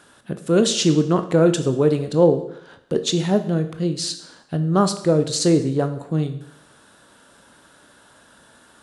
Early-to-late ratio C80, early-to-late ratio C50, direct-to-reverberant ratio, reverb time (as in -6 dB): 14.5 dB, 11.5 dB, 8.0 dB, 0.75 s